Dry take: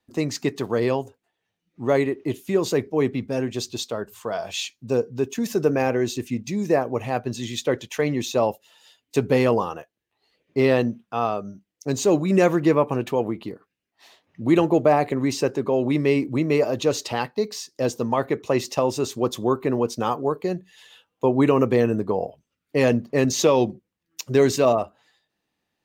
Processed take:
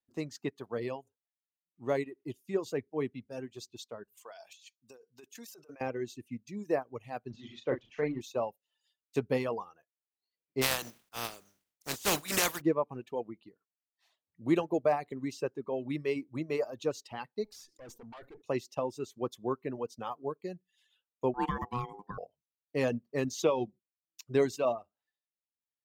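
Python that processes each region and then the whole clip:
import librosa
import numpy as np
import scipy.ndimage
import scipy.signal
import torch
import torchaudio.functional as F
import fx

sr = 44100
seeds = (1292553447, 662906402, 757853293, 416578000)

y = fx.chain(x, sr, fx.highpass(hz=1000.0, slope=6),
    fx.high_shelf(hz=3700.0, db=8.5),
    fx.over_compress(threshold_db=-33.0, ratio=-1.0), at=(4.17, 5.81))
y = fx.chain(y, sr, fx.zero_step(step_db=-36.0),
    fx.bessel_lowpass(hz=3200.0, order=4),
    fx.doubler(ms=38.0, db=-4.5), at=(7.3, 8.21))
y = fx.spec_flatten(y, sr, power=0.29, at=(10.61, 12.6), fade=0.02)
y = fx.sustainer(y, sr, db_per_s=110.0, at=(10.61, 12.6), fade=0.02)
y = fx.chain(y, sr, fx.tube_stage(drive_db=28.0, bias=0.8),
    fx.transient(attack_db=-3, sustain_db=2),
    fx.env_flatten(amount_pct=70), at=(17.44, 18.42))
y = fx.chain(y, sr, fx.low_shelf(hz=69.0, db=11.0),
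    fx.ring_mod(carrier_hz=610.0), at=(21.34, 22.18))
y = fx.dereverb_blind(y, sr, rt60_s=1.4)
y = fx.upward_expand(y, sr, threshold_db=-38.0, expansion=1.5)
y = y * librosa.db_to_amplitude(-8.0)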